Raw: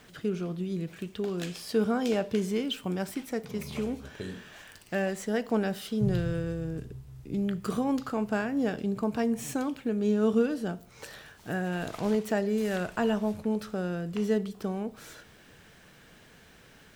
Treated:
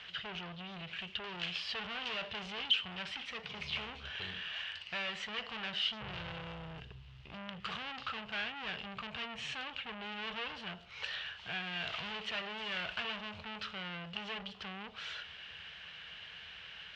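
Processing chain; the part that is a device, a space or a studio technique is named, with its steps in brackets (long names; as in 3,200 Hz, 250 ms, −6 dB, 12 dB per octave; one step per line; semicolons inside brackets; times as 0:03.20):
scooped metal amplifier (tube saturation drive 38 dB, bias 0.35; loudspeaker in its box 81–3,800 Hz, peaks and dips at 120 Hz −7 dB, 340 Hz +4 dB, 2,900 Hz +9 dB; guitar amp tone stack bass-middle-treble 10-0-10)
level +11.5 dB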